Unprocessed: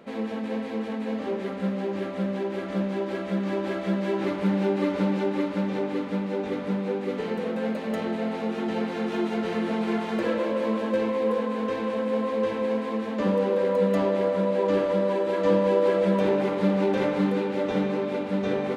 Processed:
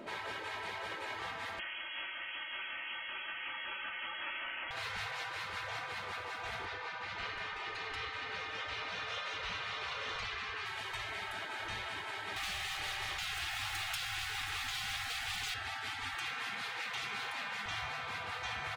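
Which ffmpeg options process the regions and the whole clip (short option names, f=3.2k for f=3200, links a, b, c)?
-filter_complex "[0:a]asettb=1/sr,asplit=3[a][b][c];[a]atrim=end=1.594[d];[b]atrim=start=1.59:end=4.71,asetpts=PTS-STARTPTS,afade=t=in:d=0.004:c=qsin,afade=t=out:st=3.116:d=0.004:c=qsin,highpass=370,aemphasis=mode=reproduction:type=75fm,lowpass=f=3k:t=q:w=0.5098,lowpass=f=3k:t=q:w=0.6013,lowpass=f=3k:t=q:w=0.9,lowpass=f=3k:t=q:w=2.563,afreqshift=-3500[e];[c]atrim=start=4.706[f];[d][e]acrossfade=d=0.004:c1=hsin:c2=qsin[g];[g][f]acrossfade=d=0.004:c1=qsin:c2=hsin,asettb=1/sr,asplit=3[h][i][j];[h]atrim=end=6.654[k];[i]atrim=start=6.65:end=10.66,asetpts=PTS-STARTPTS,afade=t=in:d=0.004:c=qsin,afade=t=out:st=4.006:d=0.004:c=qsin,lowpass=4.7k,aecho=1:1:3.4:0.74,atrim=end_sample=176841[l];[j]atrim=start=10.656[m];[k][l]acrossfade=d=0.004:c1=hsin:c2=qsin[n];[n][m]acrossfade=d=0.004:c1=qsin:c2=hsin,asettb=1/sr,asplit=3[o][p][q];[o]atrim=end=12.364[r];[p]atrim=start=12.36:end=15.54,asetpts=PTS-STARTPTS,afade=t=in:d=0.004:c=qsin,afade=t=out:st=3.176:d=0.004:c=qsin,aeval=exprs='sgn(val(0))*max(abs(val(0))-0.00501,0)':c=same,acontrast=76[s];[q]atrim=start=15.536[t];[r][s]acrossfade=d=0.004:c1=hsin:c2=qsin[u];[u][t]acrossfade=d=0.004:c1=qsin:c2=hsin,asettb=1/sr,asplit=3[v][w][x];[v]atrim=end=16.144[y];[w]atrim=start=16.14:end=17.66,asetpts=PTS-STARTPTS,afade=t=in:d=0.004:c=qsin,afade=t=out:st=1.516:d=0.004:c=qsin,highpass=f=270:p=1,acompressor=mode=upward:threshold=-35dB:ratio=2.5:attack=3.2:release=140:knee=2.83:detection=peak,afreqshift=20[z];[x]atrim=start=17.656[aa];[y][z]acrossfade=d=0.004:c1=hsin:c2=qsin[ab];[ab][aa]acrossfade=d=0.004:c1=qsin:c2=hsin,aecho=1:1:3.2:0.69,afftfilt=real='re*lt(hypot(re,im),0.0501)':imag='im*lt(hypot(re,im),0.0501)':win_size=1024:overlap=0.75,volume=1dB"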